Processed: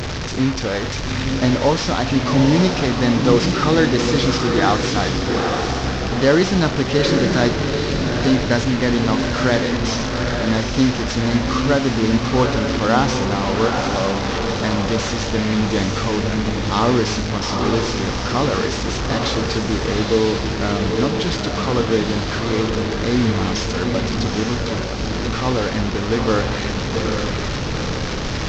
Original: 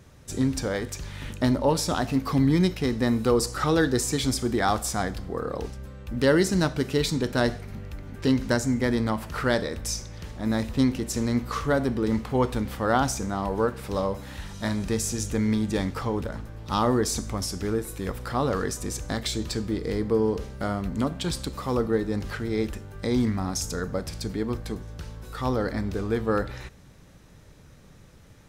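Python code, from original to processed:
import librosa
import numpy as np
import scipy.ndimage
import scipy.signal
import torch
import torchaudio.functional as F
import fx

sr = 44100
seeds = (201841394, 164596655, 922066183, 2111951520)

y = fx.delta_mod(x, sr, bps=32000, step_db=-24.5)
y = fx.echo_diffused(y, sr, ms=844, feedback_pct=46, wet_db=-4)
y = y * 10.0 ** (5.5 / 20.0)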